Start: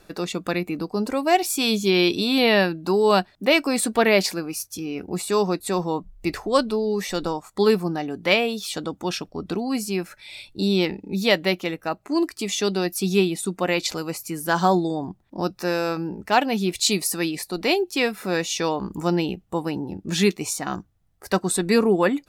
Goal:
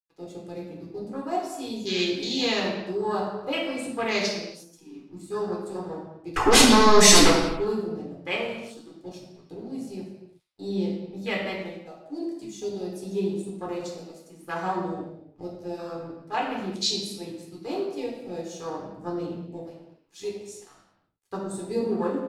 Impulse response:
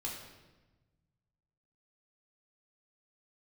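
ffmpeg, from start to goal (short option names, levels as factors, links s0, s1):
-filter_complex "[0:a]adynamicequalizer=threshold=0.00891:dfrequency=6600:dqfactor=0.84:tfrequency=6600:tqfactor=0.84:attack=5:release=100:ratio=0.375:range=3:mode=boostabove:tftype=bell,asettb=1/sr,asplit=3[s0][s1][s2];[s0]atrim=end=6.364[s3];[s1]atrim=start=6.36:end=7.3,asetpts=PTS-STARTPTS,afade=t=in:d=0.004:c=qsin,afade=t=out:st=0.936:d=0.004:c=qsin,aeval=exprs='0.562*sin(PI/2*8.91*val(0)/0.562)':c=same[s4];[s2]atrim=start=7.296[s5];[s3][s4]acrossfade=d=0.004:c1=hsin:c2=qsin[s6];[s6][s5]acrossfade=d=0.004:c1=qsin:c2=hsin,asettb=1/sr,asplit=3[s7][s8][s9];[s7]atrim=end=19.614[s10];[s8]atrim=start=19.61:end=20.75,asetpts=PTS-STARTPTS,afade=t=in:d=0.004:c=qsin,afade=t=out:st=1.136:d=0.004:c=qsin,highpass=380[s11];[s9]atrim=start=20.746[s12];[s10][s11]acrossfade=d=0.004:c1=hsin:c2=qsin[s13];[s13][s12]acrossfade=d=0.004:c1=qsin:c2=hsin,asplit=2[s14][s15];[s15]adelay=86,lowpass=f=2800:p=1,volume=0.316,asplit=2[s16][s17];[s17]adelay=86,lowpass=f=2800:p=1,volume=0.38,asplit=2[s18][s19];[s19]adelay=86,lowpass=f=2800:p=1,volume=0.38,asplit=2[s20][s21];[s21]adelay=86,lowpass=f=2800:p=1,volume=0.38[s22];[s14][s16][s18][s20][s22]amix=inputs=5:normalize=0,aeval=exprs='sgn(val(0))*max(abs(val(0))-0.0251,0)':c=same,afwtdn=0.0708,lowpass=11000,highshelf=f=3300:g=8.5[s23];[1:a]atrim=start_sample=2205,afade=t=out:st=0.43:d=0.01,atrim=end_sample=19404[s24];[s23][s24]afir=irnorm=-1:irlink=0,volume=0.376"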